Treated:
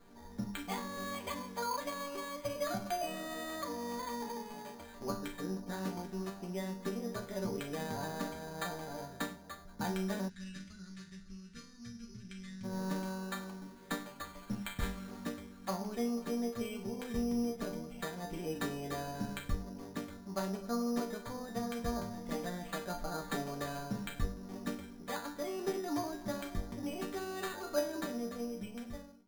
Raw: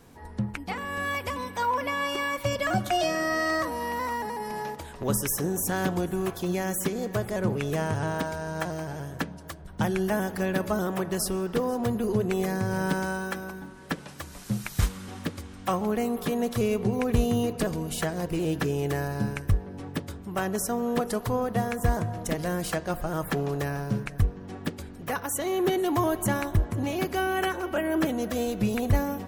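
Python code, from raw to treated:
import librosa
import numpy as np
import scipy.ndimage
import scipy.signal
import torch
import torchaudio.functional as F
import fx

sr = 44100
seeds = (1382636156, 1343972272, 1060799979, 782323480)

y = fx.fade_out_tail(x, sr, length_s=1.62)
y = fx.hum_notches(y, sr, base_hz=50, count=4)
y = fx.resonator_bank(y, sr, root=55, chord='minor', decay_s=0.36)
y = fx.rider(y, sr, range_db=4, speed_s=2.0)
y = np.repeat(scipy.signal.resample_poly(y, 1, 8), 8)[:len(y)]
y = fx.curve_eq(y, sr, hz=(130.0, 490.0, 890.0, 1400.0, 2400.0, 8800.0, 13000.0), db=(0, -27, -30, -8, -2, -6, -26), at=(10.28, 12.63), fade=0.02)
y = y * librosa.db_to_amplitude(9.0)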